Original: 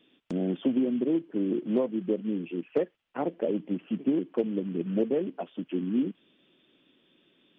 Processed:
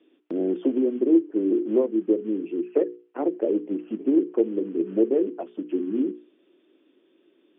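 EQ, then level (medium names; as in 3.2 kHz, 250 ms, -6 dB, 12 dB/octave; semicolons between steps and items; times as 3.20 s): resonant high-pass 340 Hz, resonance Q 3.5; distance through air 360 m; hum notches 60/120/180/240/300/360/420/480 Hz; 0.0 dB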